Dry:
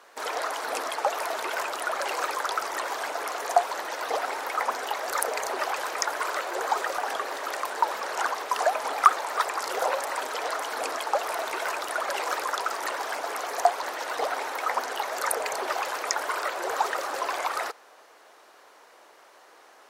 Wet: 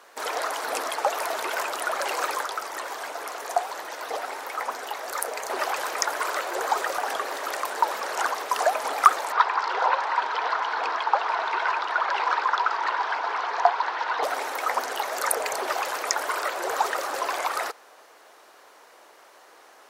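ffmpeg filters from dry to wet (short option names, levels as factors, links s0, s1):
-filter_complex "[0:a]asettb=1/sr,asplit=3[s0][s1][s2];[s0]atrim=end=2.444[s3];[s1]atrim=start=2.44:end=5.5,asetpts=PTS-STARTPTS,afade=t=in:d=0.004:c=qsin,afade=t=out:st=3.056:d=0.004:c=qsin,flanger=delay=6.1:depth=7.6:regen=-76:speed=1.3:shape=triangular[s4];[s2]atrim=start=5.496[s5];[s3][s4]acrossfade=d=0.004:c1=hsin:c2=qsin[s6];[s6][s5]acrossfade=d=0.004:c1=qsin:c2=hsin,asettb=1/sr,asplit=3[s7][s8][s9];[s7]atrim=end=9.324[s10];[s8]atrim=start=9.32:end=14.23,asetpts=PTS-STARTPTS,afade=t=in:d=0.004:c=qsin,afade=t=out:st=4.906:d=0.004:c=qsin,highpass=390,equalizer=f=580:t=q:w=4:g=-7,equalizer=f=960:t=q:w=4:g=9,equalizer=f=1500:t=q:w=4:g=4,lowpass=f=4500:w=0.5412,lowpass=f=4500:w=1.3066[s11];[s9]atrim=start=14.226[s12];[s10][s11]acrossfade=d=0.004:c1=hsin:c2=qsin[s13];[s13][s12]acrossfade=d=0.004:c1=qsin:c2=hsin,highshelf=f=9600:g=4,volume=1.19"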